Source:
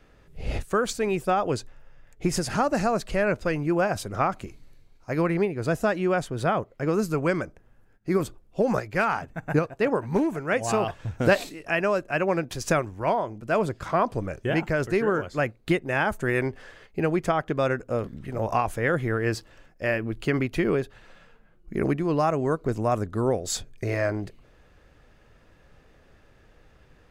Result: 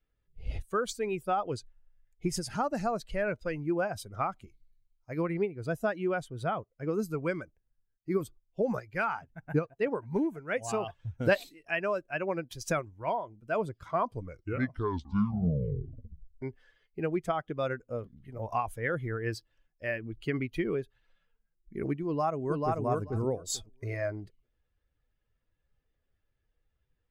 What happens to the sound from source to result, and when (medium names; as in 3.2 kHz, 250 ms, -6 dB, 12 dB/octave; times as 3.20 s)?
14.15 s: tape stop 2.27 s
22.05–22.81 s: echo throw 440 ms, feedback 25%, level -1 dB
whole clip: expander on every frequency bin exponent 1.5; trim -3.5 dB